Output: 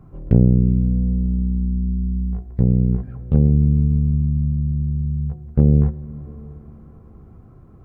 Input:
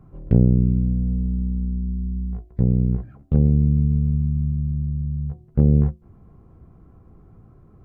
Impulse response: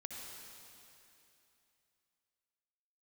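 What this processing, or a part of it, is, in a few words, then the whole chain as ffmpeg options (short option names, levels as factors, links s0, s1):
compressed reverb return: -filter_complex "[0:a]asplit=2[s0][s1];[1:a]atrim=start_sample=2205[s2];[s1][s2]afir=irnorm=-1:irlink=0,acompressor=threshold=0.0562:ratio=6,volume=0.596[s3];[s0][s3]amix=inputs=2:normalize=0,volume=1.12"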